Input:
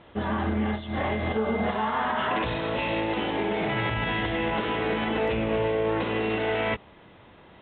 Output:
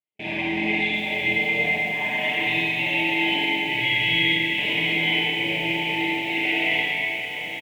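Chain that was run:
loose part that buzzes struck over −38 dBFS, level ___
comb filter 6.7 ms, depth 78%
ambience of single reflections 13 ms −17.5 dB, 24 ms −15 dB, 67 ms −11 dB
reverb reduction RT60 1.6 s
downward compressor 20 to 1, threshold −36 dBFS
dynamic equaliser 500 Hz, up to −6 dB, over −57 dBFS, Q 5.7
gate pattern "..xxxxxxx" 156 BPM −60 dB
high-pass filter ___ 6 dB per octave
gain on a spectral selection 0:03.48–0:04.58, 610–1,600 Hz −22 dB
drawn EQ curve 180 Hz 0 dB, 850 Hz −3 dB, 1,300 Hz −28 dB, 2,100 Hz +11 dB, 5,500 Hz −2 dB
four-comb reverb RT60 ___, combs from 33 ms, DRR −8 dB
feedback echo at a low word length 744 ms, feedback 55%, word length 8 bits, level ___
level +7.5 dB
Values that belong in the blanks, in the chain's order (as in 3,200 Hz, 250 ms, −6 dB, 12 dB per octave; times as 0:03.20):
−26 dBFS, 280 Hz, 2.9 s, −11.5 dB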